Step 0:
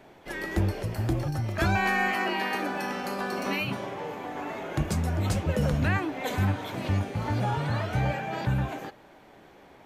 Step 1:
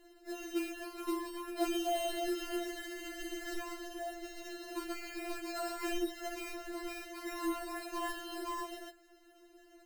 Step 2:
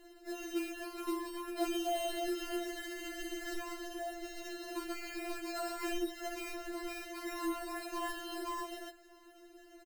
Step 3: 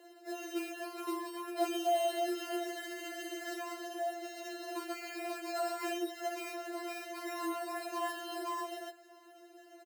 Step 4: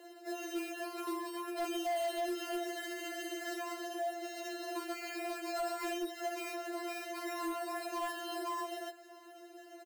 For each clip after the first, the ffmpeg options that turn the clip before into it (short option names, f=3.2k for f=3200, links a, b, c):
-af "acrusher=samples=38:mix=1:aa=0.000001,afftfilt=real='re*4*eq(mod(b,16),0)':imag='im*4*eq(mod(b,16),0)':win_size=2048:overlap=0.75,volume=-5dB"
-filter_complex "[0:a]asplit=2[a][b];[b]acompressor=threshold=-46dB:ratio=6,volume=-1dB[c];[a][c]amix=inputs=2:normalize=0,asplit=2[d][e];[e]adelay=641.4,volume=-27dB,highshelf=f=4k:g=-14.4[f];[d][f]amix=inputs=2:normalize=0,volume=-2.5dB"
-af "highpass=f=490:t=q:w=3.5"
-filter_complex "[0:a]asplit=2[a][b];[b]acompressor=threshold=-44dB:ratio=6,volume=0.5dB[c];[a][c]amix=inputs=2:normalize=0,asoftclip=type=hard:threshold=-28.5dB,volume=-3dB"